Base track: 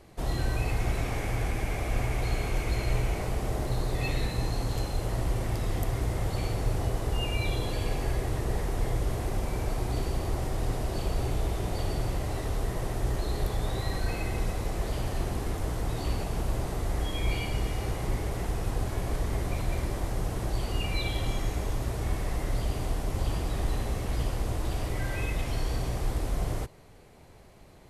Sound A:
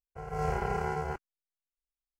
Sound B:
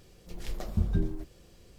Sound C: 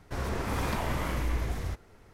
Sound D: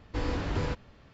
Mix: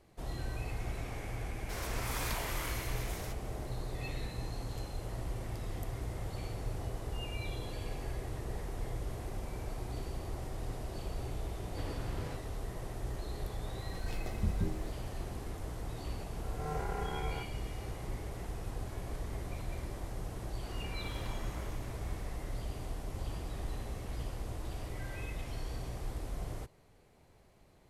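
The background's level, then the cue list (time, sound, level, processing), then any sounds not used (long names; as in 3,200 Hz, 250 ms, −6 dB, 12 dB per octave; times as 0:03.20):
base track −10 dB
0:01.58: mix in C −7 dB + spectral tilt +3.5 dB per octave
0:11.62: mix in D −12.5 dB
0:13.66: mix in B −6 dB
0:16.27: mix in A −7.5 dB
0:20.53: mix in C −15 dB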